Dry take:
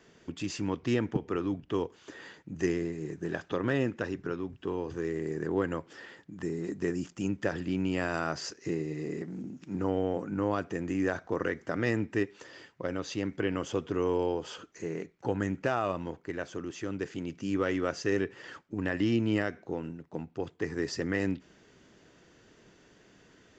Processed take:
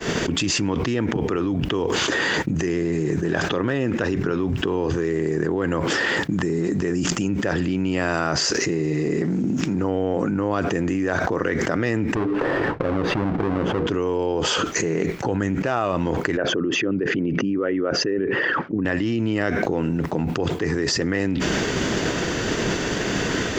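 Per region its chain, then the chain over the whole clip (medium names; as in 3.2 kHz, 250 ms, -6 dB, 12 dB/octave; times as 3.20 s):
12.15–13.87 s: square wave that keeps the level + low-pass 1.4 kHz + hum notches 60/120/180/240/300/360/420/480 Hz
16.37–18.85 s: resonances exaggerated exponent 1.5 + band-pass 130–3100 Hz
whole clip: expander -54 dBFS; level flattener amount 100%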